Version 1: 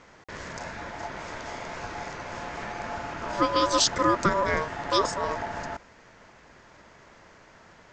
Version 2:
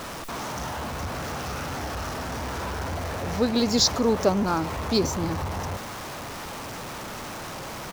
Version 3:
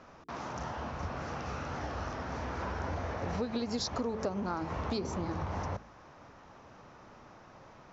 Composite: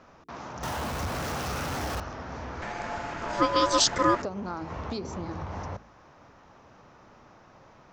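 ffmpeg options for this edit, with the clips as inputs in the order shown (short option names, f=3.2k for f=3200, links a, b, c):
-filter_complex "[2:a]asplit=3[a][b][c];[a]atrim=end=0.632[d];[1:a]atrim=start=0.628:end=2.002[e];[b]atrim=start=1.998:end=2.622[f];[0:a]atrim=start=2.618:end=4.222[g];[c]atrim=start=4.218[h];[d][e]acrossfade=d=0.004:c1=hsin:c2=hsin[i];[i][f]acrossfade=d=0.004:c1=hsin:c2=hsin[j];[j][g]acrossfade=d=0.004:c1=hsin:c2=hsin[k];[k][h]acrossfade=d=0.004:c1=hsin:c2=hsin"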